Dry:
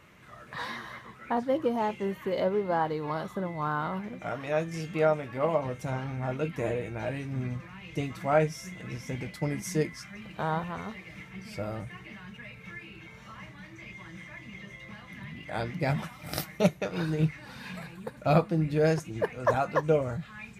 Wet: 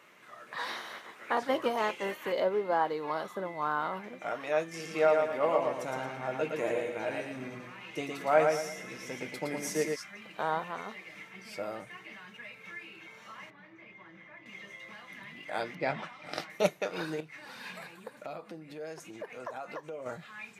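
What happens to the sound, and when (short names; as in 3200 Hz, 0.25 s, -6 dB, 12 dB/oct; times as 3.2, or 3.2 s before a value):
0.66–2.31 spectral limiter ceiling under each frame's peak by 13 dB
4.68–9.96 feedback echo 0.114 s, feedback 36%, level -4 dB
13.5–14.46 tape spacing loss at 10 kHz 32 dB
15.75–16.5 LPF 4100 Hz
17.2–20.06 compressor 10:1, threshold -35 dBFS
whole clip: HPF 350 Hz 12 dB/oct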